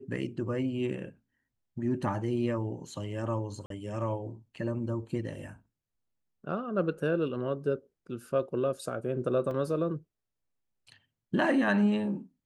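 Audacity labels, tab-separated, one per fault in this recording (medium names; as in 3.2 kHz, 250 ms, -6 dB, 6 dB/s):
3.660000	3.700000	dropout 43 ms
9.510000	9.510000	dropout 2.7 ms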